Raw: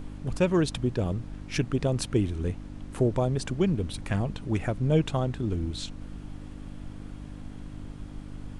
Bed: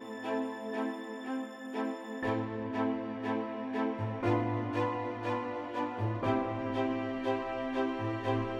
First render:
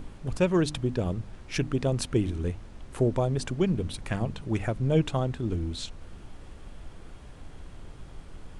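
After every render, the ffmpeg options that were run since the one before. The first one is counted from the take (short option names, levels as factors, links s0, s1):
-af "bandreject=f=50:t=h:w=4,bandreject=f=100:t=h:w=4,bandreject=f=150:t=h:w=4,bandreject=f=200:t=h:w=4,bandreject=f=250:t=h:w=4,bandreject=f=300:t=h:w=4"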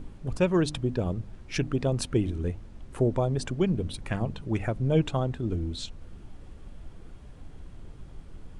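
-af "afftdn=nr=6:nf=-47"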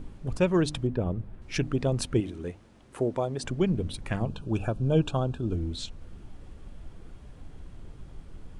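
-filter_complex "[0:a]asettb=1/sr,asplit=3[s0][s1][s2];[s0]atrim=end=0.874[s3];[s1]atrim=start=0.87:end=1.42,asetpts=PTS-STARTPTS,afade=t=in:d=0.004:c=qsin,afade=t=out:st=0.546:d=0.004:c=qsin,equalizer=f=6300:w=0.67:g=-14[s4];[s2]atrim=start=1.416[s5];[s3][s4]acrossfade=d=0.004:c1=hsin:c2=qsin[s6];[s6][s5]acrossfade=d=0.004:c1=qsin:c2=hsin,asettb=1/sr,asplit=3[s7][s8][s9];[s7]atrim=end=2.204[s10];[s8]atrim=start=2.2:end=3.44,asetpts=PTS-STARTPTS,afade=t=in:d=0.004:c=qsin,afade=t=out:st=1.236:d=0.004:c=qsin,highpass=f=290:p=1[s11];[s9]atrim=start=3.436[s12];[s10][s11]acrossfade=d=0.004:c1=hsin:c2=qsin[s13];[s13][s12]acrossfade=d=0.004:c1=qsin:c2=hsin,asettb=1/sr,asplit=3[s14][s15][s16];[s14]atrim=end=4.264[s17];[s15]atrim=start=4.26:end=5.55,asetpts=PTS-STARTPTS,afade=t=in:d=0.004:c=qsin,afade=t=out:st=1.286:d=0.004:c=qsin,asuperstop=centerf=2000:order=12:qfactor=3.3[s18];[s16]atrim=start=5.546[s19];[s17][s18]acrossfade=d=0.004:c1=hsin:c2=qsin[s20];[s20][s19]acrossfade=d=0.004:c1=qsin:c2=hsin"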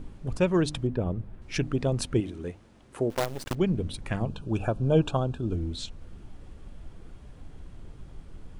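-filter_complex "[0:a]asettb=1/sr,asplit=3[s0][s1][s2];[s0]atrim=end=3.104[s3];[s1]atrim=start=3.1:end=3.55,asetpts=PTS-STARTPTS,afade=t=in:d=0.004:c=qsin,afade=t=out:st=0.446:d=0.004:c=qsin,acrusher=bits=5:dc=4:mix=0:aa=0.000001[s4];[s2]atrim=start=3.546[s5];[s3][s4]acrossfade=d=0.004:c1=hsin:c2=qsin[s6];[s6][s5]acrossfade=d=0.004:c1=qsin:c2=hsin,asettb=1/sr,asplit=3[s7][s8][s9];[s7]atrim=end=4.604[s10];[s8]atrim=start=4.6:end=5.17,asetpts=PTS-STARTPTS,afade=t=in:d=0.004:c=qsin,afade=t=out:st=0.566:d=0.004:c=qsin,equalizer=f=790:w=0.66:g=4[s11];[s9]atrim=start=5.166[s12];[s10][s11]acrossfade=d=0.004:c1=hsin:c2=qsin[s13];[s13][s12]acrossfade=d=0.004:c1=qsin:c2=hsin"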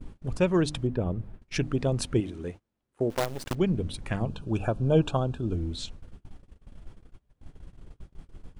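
-af "agate=range=0.0447:threshold=0.01:ratio=16:detection=peak"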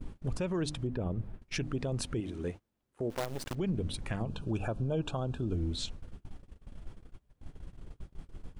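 -af "acompressor=threshold=0.0316:ratio=1.5,alimiter=level_in=1.06:limit=0.0631:level=0:latency=1:release=84,volume=0.944"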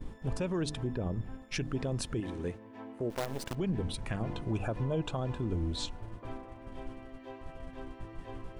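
-filter_complex "[1:a]volume=0.188[s0];[0:a][s0]amix=inputs=2:normalize=0"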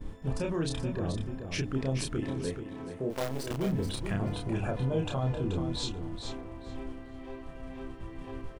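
-filter_complex "[0:a]asplit=2[s0][s1];[s1]adelay=30,volume=0.708[s2];[s0][s2]amix=inputs=2:normalize=0,asplit=2[s3][s4];[s4]aecho=0:1:431|862|1293:0.422|0.0759|0.0137[s5];[s3][s5]amix=inputs=2:normalize=0"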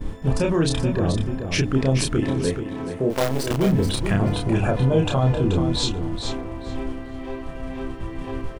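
-af "volume=3.55"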